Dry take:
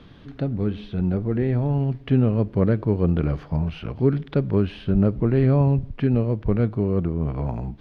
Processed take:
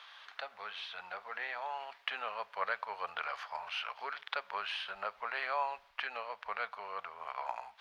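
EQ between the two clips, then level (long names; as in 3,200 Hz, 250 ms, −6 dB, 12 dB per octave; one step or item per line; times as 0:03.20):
inverse Chebyshev high-pass filter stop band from 340 Hz, stop band 50 dB
+3.5 dB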